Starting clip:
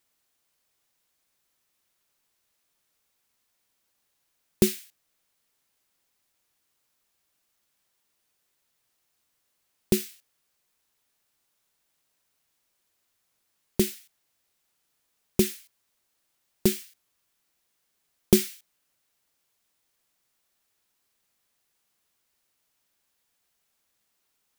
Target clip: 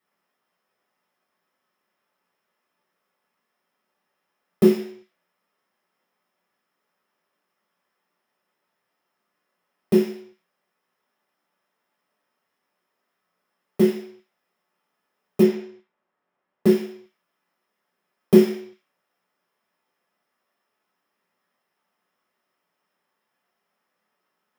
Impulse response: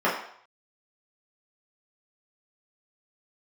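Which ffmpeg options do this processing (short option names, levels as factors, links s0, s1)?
-filter_complex "[0:a]asettb=1/sr,asplit=3[s0][s1][s2];[s0]atrim=end=15.434[s3];[s1]atrim=start=15.43:end=16.66,asetpts=PTS-STARTPTS,afade=t=in:d=0.004:c=qsin,afade=t=out:st=1.226:d=0.004:c=qsin,adynamicsmooth=sensitivity=7:basefreq=2700[s4];[s2]atrim=start=16.656[s5];[s3][s4]acrossfade=d=0.004:c1=hsin:c2=qsin[s6];[s6][s5]acrossfade=d=0.004:c1=qsin:c2=hsin[s7];[1:a]atrim=start_sample=2205[s8];[s7][s8]afir=irnorm=-1:irlink=0,volume=0.282"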